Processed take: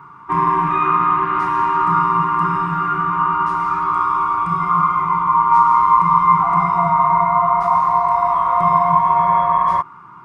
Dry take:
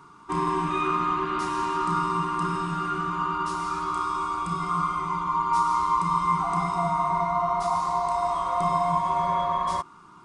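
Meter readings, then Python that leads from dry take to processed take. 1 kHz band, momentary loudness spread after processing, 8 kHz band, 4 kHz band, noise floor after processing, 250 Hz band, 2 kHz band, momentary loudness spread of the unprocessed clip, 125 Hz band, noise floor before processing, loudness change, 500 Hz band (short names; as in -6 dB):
+10.5 dB, 6 LU, under -10 dB, n/a, -40 dBFS, +4.5 dB, +8.5 dB, 5 LU, +6.5 dB, -50 dBFS, +10.0 dB, +5.0 dB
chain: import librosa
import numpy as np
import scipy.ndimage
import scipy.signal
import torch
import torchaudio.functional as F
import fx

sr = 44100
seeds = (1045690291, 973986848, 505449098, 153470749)

y = fx.graphic_eq(x, sr, hz=(125, 1000, 2000, 4000, 8000), db=(11, 10, 9, -6, -12))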